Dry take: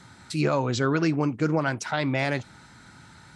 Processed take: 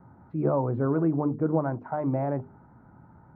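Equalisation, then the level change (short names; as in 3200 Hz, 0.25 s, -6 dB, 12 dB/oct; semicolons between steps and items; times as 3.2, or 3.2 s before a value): LPF 1000 Hz 24 dB/oct; notches 50/100/150/200/250/300/350/400/450 Hz; 0.0 dB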